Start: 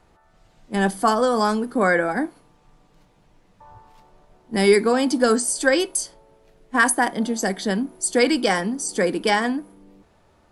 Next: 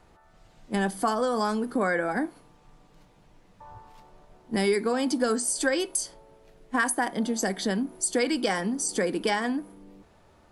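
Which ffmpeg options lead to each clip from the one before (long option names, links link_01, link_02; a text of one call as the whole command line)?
ffmpeg -i in.wav -af "acompressor=threshold=-25dB:ratio=2.5" out.wav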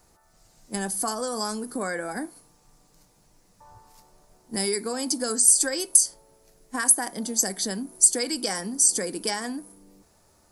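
ffmpeg -i in.wav -af "aexciter=amount=6.2:drive=3.9:freq=4600,volume=-4.5dB" out.wav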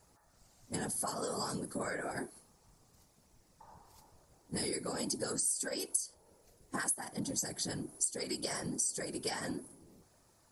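ffmpeg -i in.wav -af "afftfilt=real='hypot(re,im)*cos(2*PI*random(0))':imag='hypot(re,im)*sin(2*PI*random(1))':win_size=512:overlap=0.75,acompressor=threshold=-34dB:ratio=3" out.wav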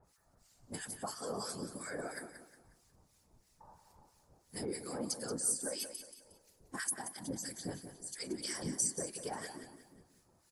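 ffmpeg -i in.wav -filter_complex "[0:a]acrossover=split=1400[link_01][link_02];[link_01]aeval=exprs='val(0)*(1-1/2+1/2*cos(2*PI*3*n/s))':channel_layout=same[link_03];[link_02]aeval=exprs='val(0)*(1-1/2-1/2*cos(2*PI*3*n/s))':channel_layout=same[link_04];[link_03][link_04]amix=inputs=2:normalize=0,asplit=2[link_05][link_06];[link_06]aecho=0:1:180|360|540|720:0.316|0.114|0.041|0.0148[link_07];[link_05][link_07]amix=inputs=2:normalize=0,volume=1dB" out.wav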